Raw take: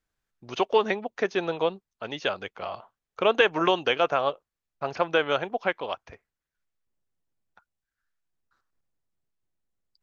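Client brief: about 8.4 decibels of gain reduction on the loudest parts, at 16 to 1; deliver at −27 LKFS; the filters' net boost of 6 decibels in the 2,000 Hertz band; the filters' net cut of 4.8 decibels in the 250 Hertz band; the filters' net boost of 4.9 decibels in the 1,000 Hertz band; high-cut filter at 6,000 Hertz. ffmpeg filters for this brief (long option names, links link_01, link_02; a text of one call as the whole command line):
ffmpeg -i in.wav -af "lowpass=6000,equalizer=frequency=250:width_type=o:gain=-9,equalizer=frequency=1000:width_type=o:gain=5,equalizer=frequency=2000:width_type=o:gain=6.5,acompressor=threshold=-21dB:ratio=16,volume=2dB" out.wav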